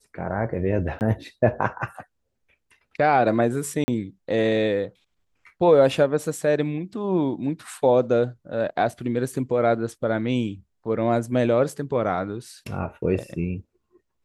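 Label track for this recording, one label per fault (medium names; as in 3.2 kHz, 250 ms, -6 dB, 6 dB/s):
0.990000	1.010000	dropout 19 ms
3.840000	3.880000	dropout 40 ms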